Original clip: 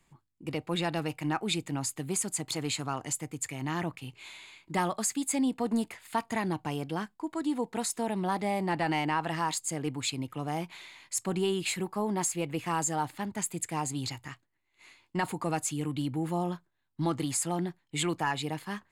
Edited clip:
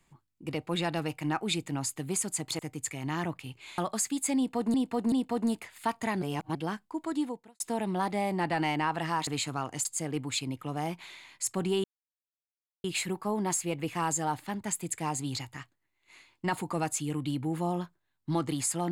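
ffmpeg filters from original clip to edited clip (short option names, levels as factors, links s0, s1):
-filter_complex "[0:a]asplit=11[s0][s1][s2][s3][s4][s5][s6][s7][s8][s9][s10];[s0]atrim=end=2.592[s11];[s1]atrim=start=3.168:end=4.362[s12];[s2]atrim=start=4.828:end=5.792[s13];[s3]atrim=start=5.408:end=5.792[s14];[s4]atrim=start=5.408:end=6.512[s15];[s5]atrim=start=6.508:end=6.842,asetpts=PTS-STARTPTS,areverse[s16];[s6]atrim=start=6.838:end=7.89,asetpts=PTS-STARTPTS,afade=t=out:st=0.662:d=0.39:c=qua[s17];[s7]atrim=start=7.89:end=9.562,asetpts=PTS-STARTPTS,afade=t=in:d=0.004:c=hsin[s18];[s8]atrim=start=2.588:end=3.172[s19];[s9]atrim=start=9.558:end=11.55,asetpts=PTS-STARTPTS,afade=t=out:st=1.988:d=0.004:c=hsin,apad=pad_dur=1[s20];[s10]atrim=start=11.55,asetpts=PTS-STARTPTS,afade=t=in:d=0.004:c=hsin[s21];[s11][s12]acrossfade=d=0.004:c1=hsin:c2=hsin[s22];[s22][s13]acrossfade=d=0.004:c1=hsin:c2=hsin[s23];[s23][s14]acrossfade=d=0.004:c1=hsin:c2=hsin[s24];[s24][s15]acrossfade=d=0.004:c1=hsin:c2=hsin[s25];[s25][s16]acrossfade=d=0.004:c1=hsin:c2=hsin[s26];[s17][s18]concat=n=2:v=0:a=1[s27];[s26][s27]acrossfade=d=0.004:c1=hsin:c2=hsin[s28];[s28][s19]acrossfade=d=0.004:c1=hsin:c2=hsin[s29];[s20][s21]concat=n=2:v=0:a=1[s30];[s29][s30]acrossfade=d=0.004:c1=hsin:c2=hsin"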